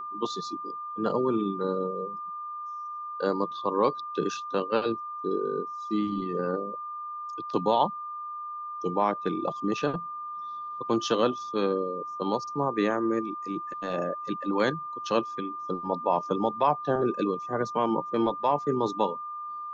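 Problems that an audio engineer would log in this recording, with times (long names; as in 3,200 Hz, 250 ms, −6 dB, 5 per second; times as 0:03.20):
whistle 1,200 Hz −34 dBFS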